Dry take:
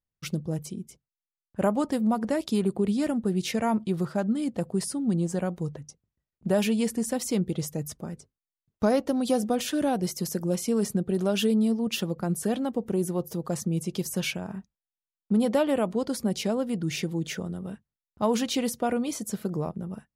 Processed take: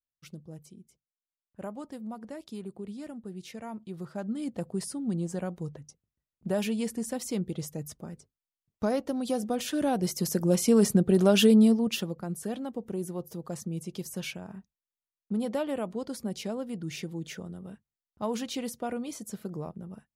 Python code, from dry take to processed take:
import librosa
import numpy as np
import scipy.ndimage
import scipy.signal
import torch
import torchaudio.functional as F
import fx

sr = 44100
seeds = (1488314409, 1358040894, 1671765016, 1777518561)

y = fx.gain(x, sr, db=fx.line((3.77, -14.5), (4.45, -5.0), (9.39, -5.0), (10.72, 4.5), (11.64, 4.5), (12.22, -7.0)))